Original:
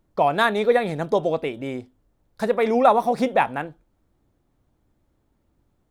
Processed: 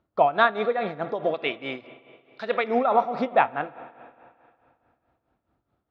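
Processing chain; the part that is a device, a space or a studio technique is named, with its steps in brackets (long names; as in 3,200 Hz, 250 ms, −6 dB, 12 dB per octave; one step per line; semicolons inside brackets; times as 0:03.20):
0:01.34–0:02.64: meter weighting curve D
combo amplifier with spring reverb and tremolo (spring reverb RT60 2.5 s, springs 45/57 ms, chirp 60 ms, DRR 13.5 dB; amplitude tremolo 4.7 Hz, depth 71%; loudspeaker in its box 75–4,200 Hz, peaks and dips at 170 Hz −4 dB, 680 Hz +5 dB, 1,300 Hz +8 dB)
level −2.5 dB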